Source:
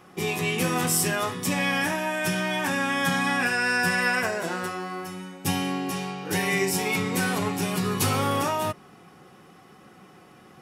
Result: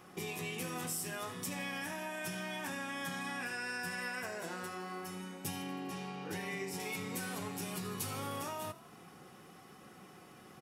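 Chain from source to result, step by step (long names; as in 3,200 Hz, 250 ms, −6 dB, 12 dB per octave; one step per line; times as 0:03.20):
high-shelf EQ 5,800 Hz +5 dB, from 0:05.62 −5 dB, from 0:06.80 +7 dB
downward compressor 3 to 1, threshold −36 dBFS, peak gain reduction 14 dB
echo with shifted repeats 80 ms, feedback 63%, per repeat +31 Hz, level −17 dB
level −5 dB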